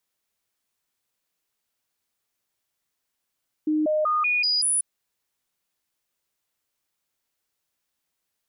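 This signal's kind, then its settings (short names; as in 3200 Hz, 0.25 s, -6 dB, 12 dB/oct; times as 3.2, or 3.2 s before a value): stepped sine 307 Hz up, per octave 1, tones 6, 0.19 s, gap 0.00 s -19.5 dBFS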